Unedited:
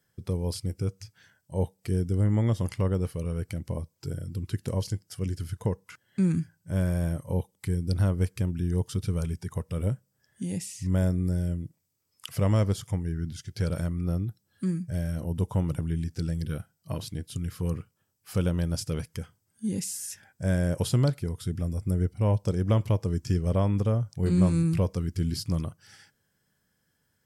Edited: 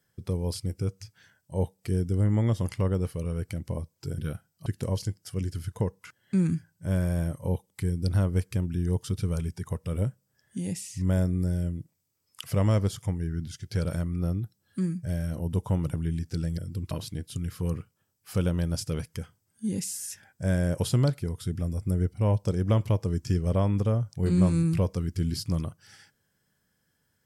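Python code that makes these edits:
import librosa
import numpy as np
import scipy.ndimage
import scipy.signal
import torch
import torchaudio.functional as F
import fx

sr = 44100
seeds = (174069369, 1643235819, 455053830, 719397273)

y = fx.edit(x, sr, fx.swap(start_s=4.18, length_s=0.33, other_s=16.43, other_length_s=0.48), tone=tone)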